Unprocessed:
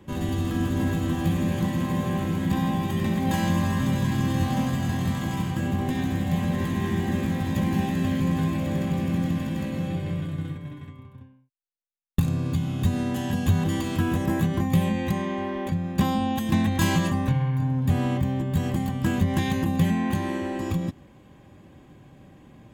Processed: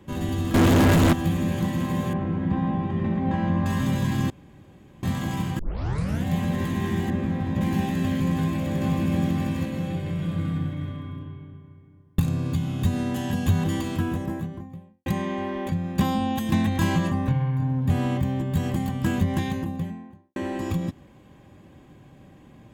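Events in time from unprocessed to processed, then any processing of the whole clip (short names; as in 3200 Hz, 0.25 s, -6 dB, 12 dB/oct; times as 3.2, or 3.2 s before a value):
0.54–1.13 sample leveller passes 5
2.13–3.66 Bessel low-pass 1400 Hz
4.3–5.03 room tone
5.59 tape start 0.66 s
7.1–7.61 LPF 1600 Hz 6 dB/oct
8.34–9.18 echo throw 0.47 s, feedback 10%, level -4 dB
10.11–11.12 reverb throw, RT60 2.7 s, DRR -2 dB
13.65–15.06 studio fade out
16.79–17.9 high shelf 2800 Hz -7.5 dB
19.1–20.36 studio fade out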